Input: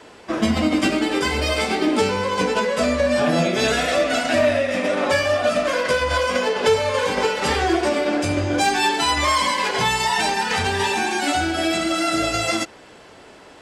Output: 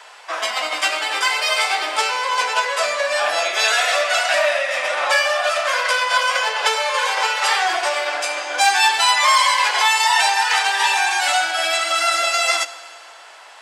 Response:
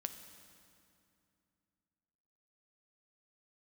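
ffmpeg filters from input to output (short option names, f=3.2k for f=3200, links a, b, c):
-filter_complex "[0:a]highpass=f=740:w=0.5412,highpass=f=740:w=1.3066,asplit=2[a][b];[1:a]atrim=start_sample=2205[c];[b][c]afir=irnorm=-1:irlink=0,volume=1dB[d];[a][d]amix=inputs=2:normalize=0"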